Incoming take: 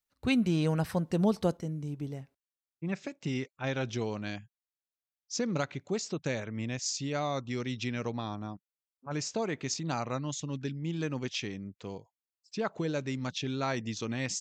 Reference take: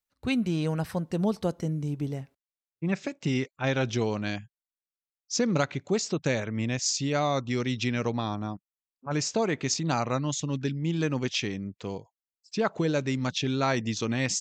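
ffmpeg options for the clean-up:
-af "asetnsamples=n=441:p=0,asendcmd='1.57 volume volume 6dB',volume=1"

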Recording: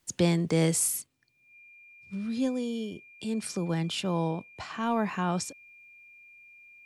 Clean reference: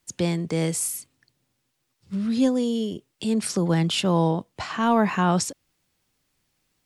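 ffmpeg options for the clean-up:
-af "bandreject=f=2400:w=30,asetnsamples=n=441:p=0,asendcmd='1.02 volume volume 8dB',volume=1"

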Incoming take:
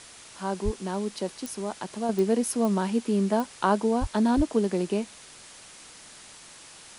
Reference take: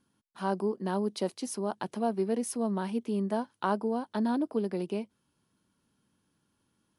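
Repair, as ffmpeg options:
-filter_complex "[0:a]adeclick=t=4,asplit=3[s0][s1][s2];[s0]afade=t=out:st=0.64:d=0.02[s3];[s1]highpass=f=140:w=0.5412,highpass=f=140:w=1.3066,afade=t=in:st=0.64:d=0.02,afade=t=out:st=0.76:d=0.02[s4];[s2]afade=t=in:st=0.76:d=0.02[s5];[s3][s4][s5]amix=inputs=3:normalize=0,asplit=3[s6][s7][s8];[s6]afade=t=out:st=4:d=0.02[s9];[s7]highpass=f=140:w=0.5412,highpass=f=140:w=1.3066,afade=t=in:st=4:d=0.02,afade=t=out:st=4.12:d=0.02[s10];[s8]afade=t=in:st=4.12:d=0.02[s11];[s9][s10][s11]amix=inputs=3:normalize=0,asplit=3[s12][s13][s14];[s12]afade=t=out:st=4.36:d=0.02[s15];[s13]highpass=f=140:w=0.5412,highpass=f=140:w=1.3066,afade=t=in:st=4.36:d=0.02,afade=t=out:st=4.48:d=0.02[s16];[s14]afade=t=in:st=4.48:d=0.02[s17];[s15][s16][s17]amix=inputs=3:normalize=0,afwtdn=0.0056,asetnsamples=n=441:p=0,asendcmd='2.09 volume volume -6dB',volume=1"

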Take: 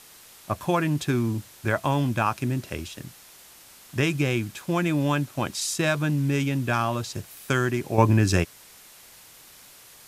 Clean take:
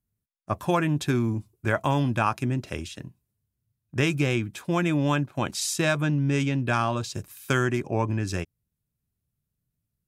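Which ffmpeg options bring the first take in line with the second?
-af "afwtdn=0.004,asetnsamples=n=441:p=0,asendcmd='7.98 volume volume -8dB',volume=1"

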